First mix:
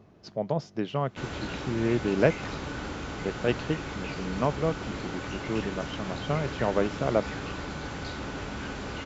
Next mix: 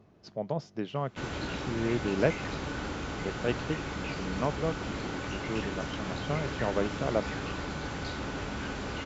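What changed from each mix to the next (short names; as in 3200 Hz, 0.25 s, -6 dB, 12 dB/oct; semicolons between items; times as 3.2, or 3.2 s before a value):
speech -4.0 dB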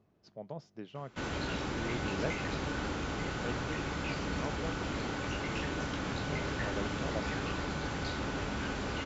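speech -10.5 dB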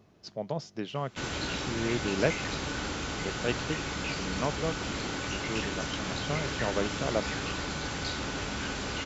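speech +9.0 dB; master: add high shelf 2800 Hz +10.5 dB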